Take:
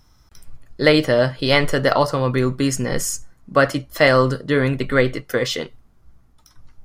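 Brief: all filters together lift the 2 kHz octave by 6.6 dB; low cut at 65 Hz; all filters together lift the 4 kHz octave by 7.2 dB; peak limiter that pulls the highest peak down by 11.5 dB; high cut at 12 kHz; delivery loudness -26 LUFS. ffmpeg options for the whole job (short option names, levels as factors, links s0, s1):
-af "highpass=65,lowpass=12000,equalizer=f=2000:t=o:g=6,equalizer=f=4000:t=o:g=7,volume=0.501,alimiter=limit=0.211:level=0:latency=1"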